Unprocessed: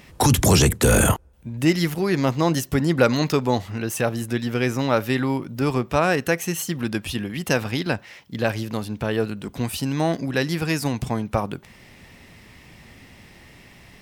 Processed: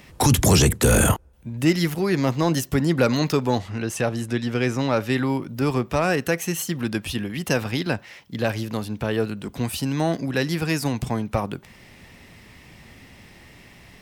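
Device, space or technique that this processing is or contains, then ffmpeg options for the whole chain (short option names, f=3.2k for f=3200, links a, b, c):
one-band saturation: -filter_complex "[0:a]asettb=1/sr,asplit=3[a][b][c];[a]atrim=end=3.594[d];[b]atrim=start=3.59:end=5.12,asetpts=PTS-STARTPTS,afade=t=in:d=0.004:c=qsin,afade=t=out:st=1.526:d=0.004:c=qsin,lowpass=9.4k[e];[c]atrim=start=5.116[f];[d][e]acrossfade=d=0.004:c1=hsin:c2=qsin[g];[g][f]acrossfade=d=0.004:c1=qsin:c2=hsin,acrossover=split=350|3600[h][i][j];[i]asoftclip=type=tanh:threshold=-14.5dB[k];[h][k][j]amix=inputs=3:normalize=0"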